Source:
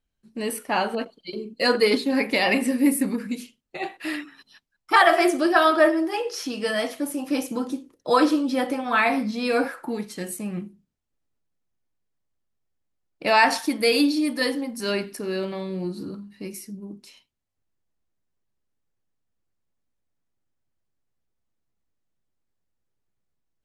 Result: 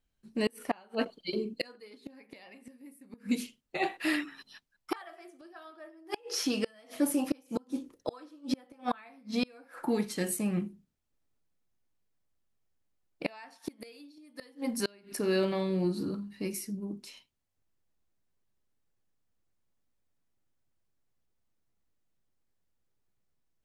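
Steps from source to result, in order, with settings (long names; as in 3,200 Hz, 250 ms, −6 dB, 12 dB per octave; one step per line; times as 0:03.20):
gate with flip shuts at −17 dBFS, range −32 dB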